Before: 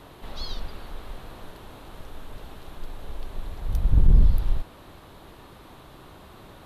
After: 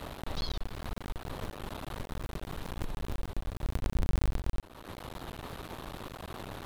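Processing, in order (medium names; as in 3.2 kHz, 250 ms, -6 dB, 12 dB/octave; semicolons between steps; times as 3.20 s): cycle switcher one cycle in 2, muted; compression 2.5:1, threshold -42 dBFS, peak gain reduction 20 dB; trim +7.5 dB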